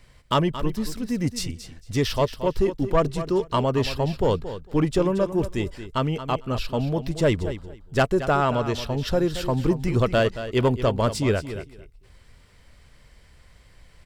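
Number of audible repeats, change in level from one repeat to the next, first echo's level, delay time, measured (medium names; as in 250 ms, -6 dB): 2, -15.5 dB, -12.0 dB, 226 ms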